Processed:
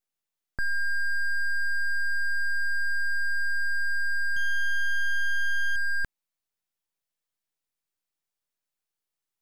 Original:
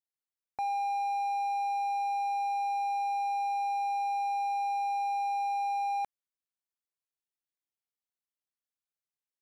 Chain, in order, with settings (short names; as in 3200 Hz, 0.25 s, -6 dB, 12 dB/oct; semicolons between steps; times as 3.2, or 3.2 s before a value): 4.36–5.76 dynamic EQ 680 Hz, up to +5 dB, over -49 dBFS, Q 5.3; full-wave rectifier; gain +7 dB